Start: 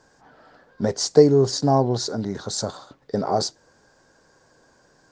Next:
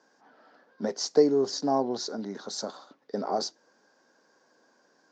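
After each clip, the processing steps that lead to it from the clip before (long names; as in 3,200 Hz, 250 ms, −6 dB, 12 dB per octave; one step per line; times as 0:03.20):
Chebyshev band-pass filter 220–6,100 Hz, order 3
level −6 dB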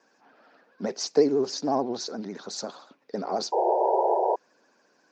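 pitch vibrato 14 Hz 98 cents
parametric band 2,500 Hz +9.5 dB 0.3 octaves
sound drawn into the spectrogram noise, 0:03.52–0:04.36, 350–980 Hz −23 dBFS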